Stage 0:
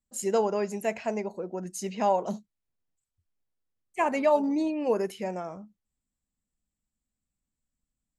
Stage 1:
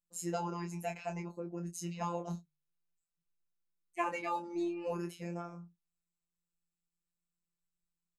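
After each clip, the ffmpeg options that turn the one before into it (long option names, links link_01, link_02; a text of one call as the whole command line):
ffmpeg -i in.wav -filter_complex "[0:a]afftfilt=real='hypot(re,im)*cos(PI*b)':imag='0':win_size=1024:overlap=0.75,asplit=2[link_01][link_02];[link_02]adelay=24,volume=-5.5dB[link_03];[link_01][link_03]amix=inputs=2:normalize=0,bandreject=frequency=50.4:width_type=h:width=4,bandreject=frequency=100.8:width_type=h:width=4,bandreject=frequency=151.2:width_type=h:width=4,volume=-5dB" out.wav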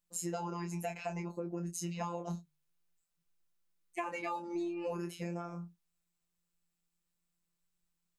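ffmpeg -i in.wav -af "acompressor=threshold=-41dB:ratio=5,volume=6dB" out.wav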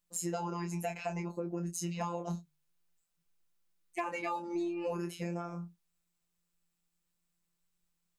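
ffmpeg -i in.wav -af "volume=24dB,asoftclip=hard,volume=-24dB,volume=2dB" out.wav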